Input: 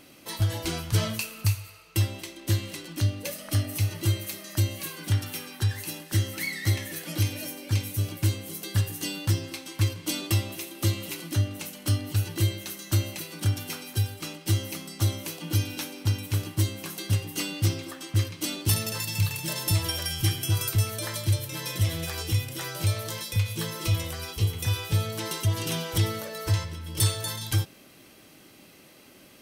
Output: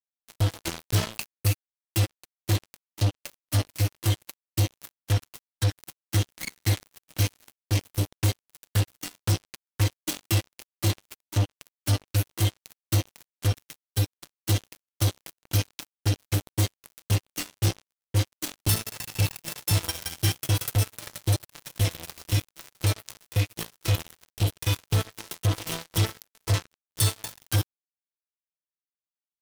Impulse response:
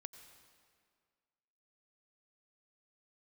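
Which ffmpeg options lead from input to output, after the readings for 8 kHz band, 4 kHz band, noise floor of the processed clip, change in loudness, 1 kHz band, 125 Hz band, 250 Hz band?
-0.5 dB, -1.0 dB, under -85 dBFS, 0.0 dB, +0.5 dB, 0.0 dB, -1.5 dB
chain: -af "acrusher=bits=3:mix=0:aa=0.5"

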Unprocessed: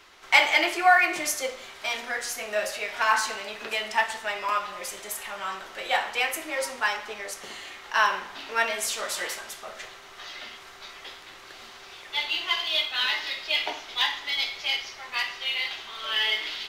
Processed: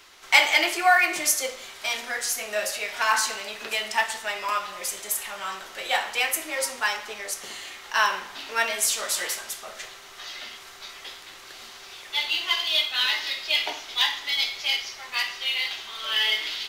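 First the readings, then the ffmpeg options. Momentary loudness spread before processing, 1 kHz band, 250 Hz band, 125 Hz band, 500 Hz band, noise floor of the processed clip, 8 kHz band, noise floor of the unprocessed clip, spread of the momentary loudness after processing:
20 LU, -0.5 dB, -1.0 dB, n/a, -1.0 dB, -45 dBFS, +6.5 dB, -47 dBFS, 18 LU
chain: -af "highshelf=f=4.1k:g=9.5,volume=-1dB"

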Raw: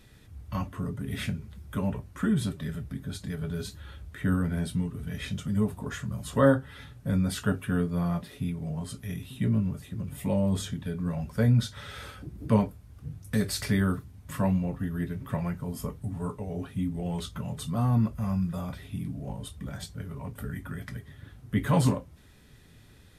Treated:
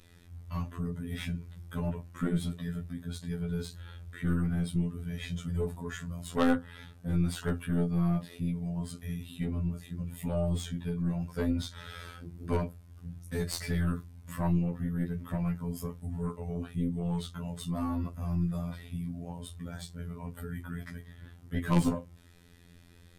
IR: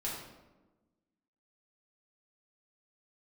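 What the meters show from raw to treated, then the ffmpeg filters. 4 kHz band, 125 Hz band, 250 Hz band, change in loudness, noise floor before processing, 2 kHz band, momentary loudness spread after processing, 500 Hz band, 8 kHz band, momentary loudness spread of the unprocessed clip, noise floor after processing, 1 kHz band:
-4.0 dB, -4.0 dB, -3.5 dB, -3.5 dB, -54 dBFS, -4.5 dB, 13 LU, -5.0 dB, -4.5 dB, 13 LU, -55 dBFS, -4.5 dB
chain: -af "afftfilt=real='hypot(re,im)*cos(PI*b)':imag='0':win_size=2048:overlap=0.75,aeval=exprs='0.335*(cos(1*acos(clip(val(0)/0.335,-1,1)))-cos(1*PI/2))+0.075*(cos(4*acos(clip(val(0)/0.335,-1,1)))-cos(4*PI/2))':c=same,volume=1.5dB"

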